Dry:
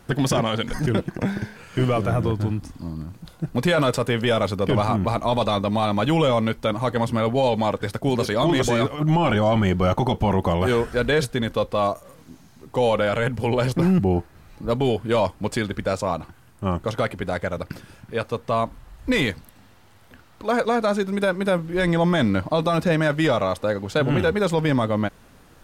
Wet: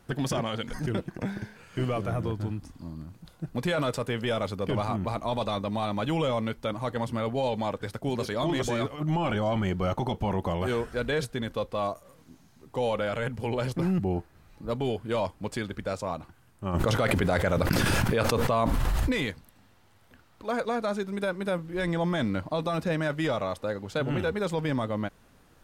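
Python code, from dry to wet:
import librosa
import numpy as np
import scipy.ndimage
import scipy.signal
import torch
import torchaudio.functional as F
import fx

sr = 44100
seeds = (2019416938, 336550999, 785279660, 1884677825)

y = fx.env_flatten(x, sr, amount_pct=100, at=(16.73, 19.11), fade=0.02)
y = y * 10.0 ** (-8.0 / 20.0)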